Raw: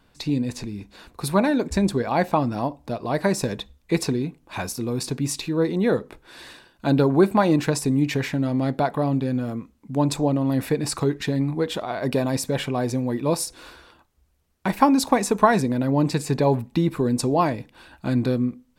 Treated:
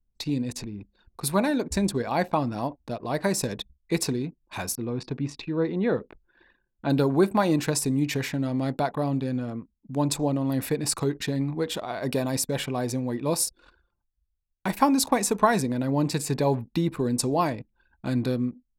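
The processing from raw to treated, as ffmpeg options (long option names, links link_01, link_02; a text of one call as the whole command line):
ffmpeg -i in.wav -filter_complex "[0:a]asettb=1/sr,asplit=3[link_01][link_02][link_03];[link_01]atrim=end=4.754[link_04];[link_02]atrim=start=4.75:end=6.9,asetpts=PTS-STARTPTS,afade=type=in:duration=0.004:curve=qsin,afade=type=out:start_time=2.146:duration=0.004:curve=qsin,lowpass=2900[link_05];[link_03]atrim=start=6.896[link_06];[link_04][link_05]acrossfade=duration=0.004:curve1=hsin:curve2=qsin[link_07];[link_07][link_06]acrossfade=duration=0.004:curve1=qsin:curve2=hsin,anlmdn=0.631,highshelf=frequency=5300:gain=9,volume=-4dB" out.wav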